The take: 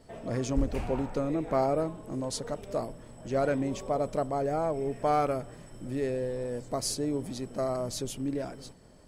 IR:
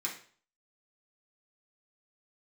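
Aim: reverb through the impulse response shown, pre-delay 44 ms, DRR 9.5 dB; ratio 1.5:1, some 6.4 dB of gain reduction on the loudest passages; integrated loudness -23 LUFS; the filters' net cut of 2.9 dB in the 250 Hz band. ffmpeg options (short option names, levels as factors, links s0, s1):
-filter_complex "[0:a]equalizer=f=250:t=o:g=-3.5,acompressor=threshold=0.0112:ratio=1.5,asplit=2[s0][s1];[1:a]atrim=start_sample=2205,adelay=44[s2];[s1][s2]afir=irnorm=-1:irlink=0,volume=0.237[s3];[s0][s3]amix=inputs=2:normalize=0,volume=4.73"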